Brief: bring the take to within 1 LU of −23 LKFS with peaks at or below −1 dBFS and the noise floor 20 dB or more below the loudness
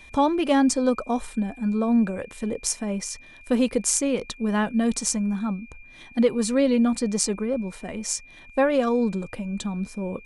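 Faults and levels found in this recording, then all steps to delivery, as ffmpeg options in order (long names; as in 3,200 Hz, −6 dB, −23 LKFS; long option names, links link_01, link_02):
interfering tone 2,400 Hz; level of the tone −47 dBFS; integrated loudness −24.5 LKFS; sample peak −4.5 dBFS; target loudness −23.0 LKFS
→ -af "bandreject=frequency=2400:width=30"
-af "volume=1.5dB"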